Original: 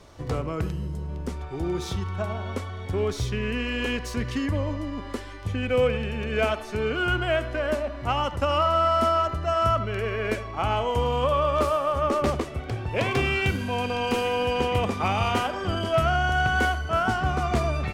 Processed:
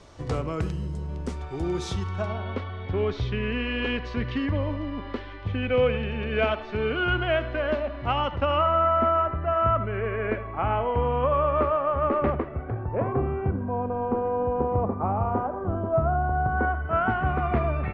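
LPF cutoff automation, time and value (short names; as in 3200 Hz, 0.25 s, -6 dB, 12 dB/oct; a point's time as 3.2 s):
LPF 24 dB/oct
2.05 s 9400 Hz
2.45 s 3800 Hz
8.31 s 3800 Hz
8.85 s 2200 Hz
12.26 s 2200 Hz
13.22 s 1100 Hz
16.46 s 1100 Hz
17.04 s 2300 Hz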